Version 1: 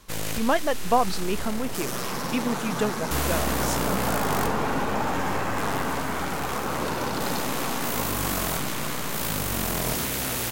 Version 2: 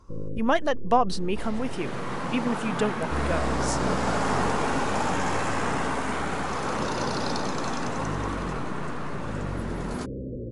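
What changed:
first sound: add Butterworth low-pass 550 Hz 96 dB per octave
second sound: add high-shelf EQ 6,100 Hz +10.5 dB
master: add linear-phase brick-wall low-pass 11,000 Hz

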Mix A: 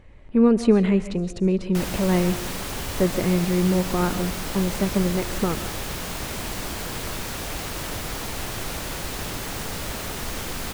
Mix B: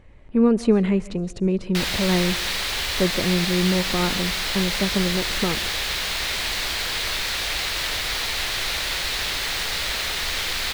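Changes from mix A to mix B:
speech: send −6.0 dB
background: add octave-band graphic EQ 125/250/2,000/4,000 Hz −8/−8/+8/+12 dB

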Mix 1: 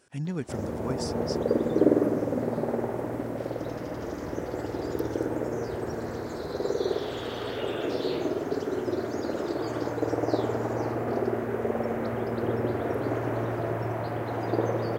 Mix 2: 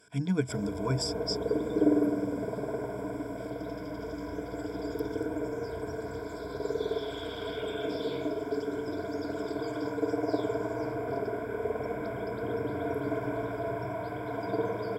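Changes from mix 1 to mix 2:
background −7.0 dB
master: add EQ curve with evenly spaced ripples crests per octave 1.7, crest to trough 17 dB

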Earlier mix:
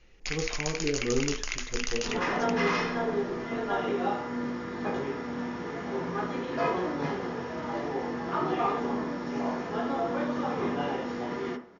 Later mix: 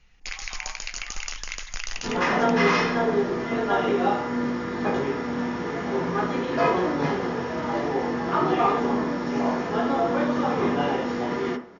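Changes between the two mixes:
speech: add Butterworth high-pass 700 Hz 72 dB per octave
second sound +6.5 dB

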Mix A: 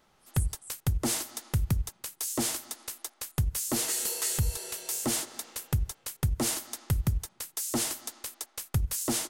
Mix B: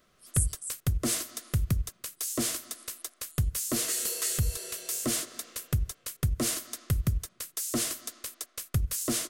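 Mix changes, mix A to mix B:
speech +11.0 dB
master: add Butterworth band-reject 860 Hz, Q 3.4

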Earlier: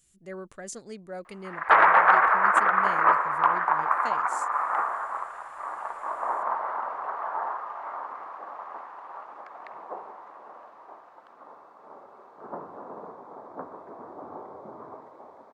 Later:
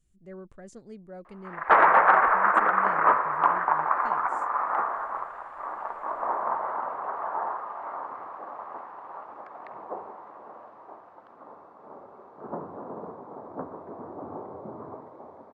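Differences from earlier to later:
speech −8.0 dB
master: add spectral tilt −3 dB per octave

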